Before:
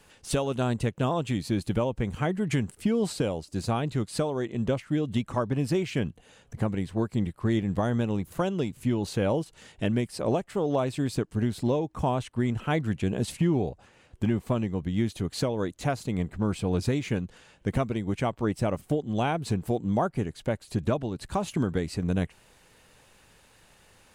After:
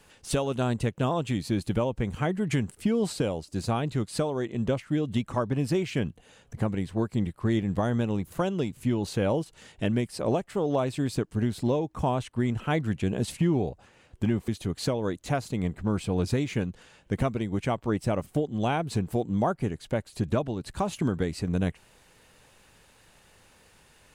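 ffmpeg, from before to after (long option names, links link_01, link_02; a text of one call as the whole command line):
ffmpeg -i in.wav -filter_complex "[0:a]asplit=2[link_01][link_02];[link_01]atrim=end=14.482[link_03];[link_02]atrim=start=15.028[link_04];[link_03][link_04]acrossfade=duration=0.004:curve1=hsin:curve2=hsin" out.wav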